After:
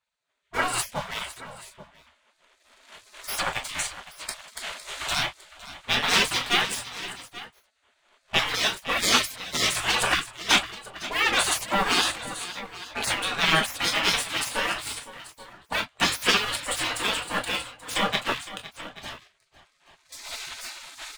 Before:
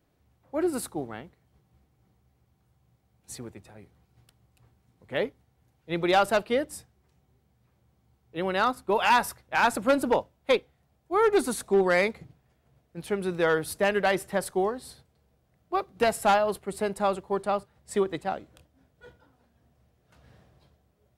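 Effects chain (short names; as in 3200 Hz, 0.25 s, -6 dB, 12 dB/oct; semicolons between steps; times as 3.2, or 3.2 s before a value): recorder AGC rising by 11 dB/s; speaker cabinet 200–8600 Hz, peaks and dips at 670 Hz -9 dB, 3000 Hz +9 dB, 5300 Hz -9 dB; sample leveller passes 2; in parallel at -9 dB: hard clip -26.5 dBFS, distortion -5 dB; on the sum: tapped delay 0.508/0.831 s -14.5/-16 dB; on a send at -1 dB: reverb, pre-delay 3 ms; on the sum: spectral gate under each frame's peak -20 dB weak; mismatched tape noise reduction decoder only; gain +6 dB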